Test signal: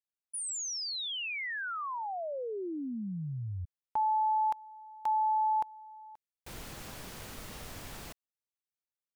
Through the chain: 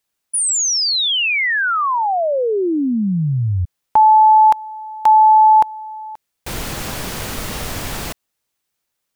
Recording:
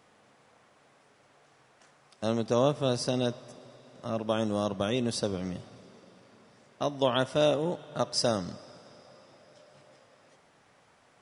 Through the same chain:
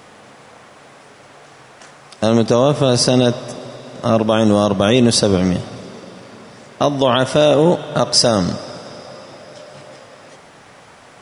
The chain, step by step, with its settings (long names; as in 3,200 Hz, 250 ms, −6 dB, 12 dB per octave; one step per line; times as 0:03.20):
boost into a limiter +20 dB
level −1 dB